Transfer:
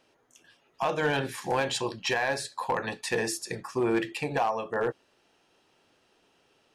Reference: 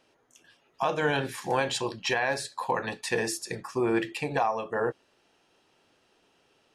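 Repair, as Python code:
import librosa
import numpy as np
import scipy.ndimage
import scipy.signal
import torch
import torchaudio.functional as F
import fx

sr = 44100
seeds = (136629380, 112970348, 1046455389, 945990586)

y = fx.fix_declip(x, sr, threshold_db=-19.5)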